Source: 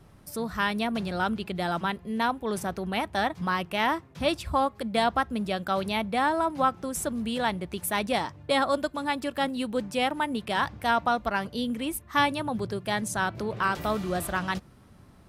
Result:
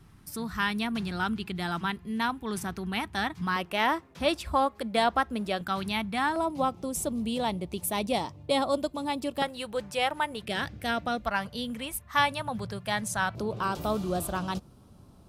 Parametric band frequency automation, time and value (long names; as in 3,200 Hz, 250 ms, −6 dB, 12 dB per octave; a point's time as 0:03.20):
parametric band −13.5 dB 0.74 octaves
570 Hz
from 0:03.56 120 Hz
from 0:05.61 530 Hz
from 0:06.36 1,600 Hz
from 0:09.42 250 Hz
from 0:10.42 990 Hz
from 0:11.25 330 Hz
from 0:13.35 1,900 Hz